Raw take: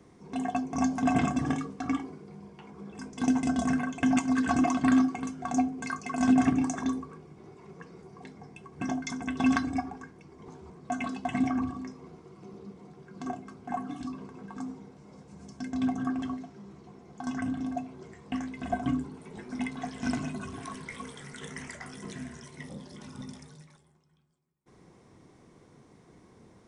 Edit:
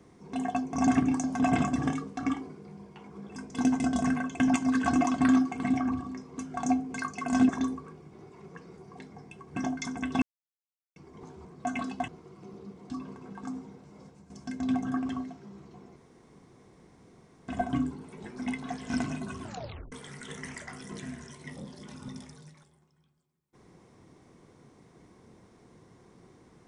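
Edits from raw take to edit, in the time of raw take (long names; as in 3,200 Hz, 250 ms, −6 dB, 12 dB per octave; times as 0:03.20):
0:06.37–0:06.74: move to 0:00.87
0:09.47–0:10.21: silence
0:11.33–0:12.08: move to 0:05.26
0:12.90–0:14.03: remove
0:15.16–0:15.43: fade out, to −10.5 dB
0:17.09–0:18.61: fill with room tone
0:20.54: tape stop 0.51 s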